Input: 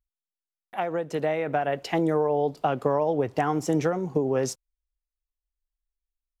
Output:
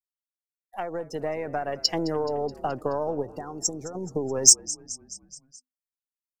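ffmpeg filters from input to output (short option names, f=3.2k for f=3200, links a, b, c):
-filter_complex "[0:a]aeval=exprs='if(lt(val(0),0),0.708*val(0),val(0))':c=same,asettb=1/sr,asplit=3[a][b][c];[a]atrim=end=3.224[d];[b]atrim=start=3.22:end=3.95,asetpts=PTS-STARTPTS,afade=t=in:d=0.004:c=qsin,afade=t=out:st=0.726:d=0.004:c=qsin,acompressor=threshold=-31dB:ratio=5[e];[c]atrim=start=3.946[f];[d][e]acrossfade=d=0.004:c1=hsin:c2=qsin[g];[g][f]acrossfade=d=0.004:c1=qsin:c2=hsin,afftdn=nr=32:nf=-37,asplit=6[h][i][j][k][l][m];[i]adelay=213,afreqshift=-51,volume=-19dB[n];[j]adelay=426,afreqshift=-102,volume=-23.3dB[o];[k]adelay=639,afreqshift=-153,volume=-27.6dB[p];[l]adelay=852,afreqshift=-204,volume=-31.9dB[q];[m]adelay=1065,afreqshift=-255,volume=-36.2dB[r];[h][n][o][p][q][r]amix=inputs=6:normalize=0,aexciter=amount=12.2:drive=9.5:freq=4.1k,volume=-2.5dB"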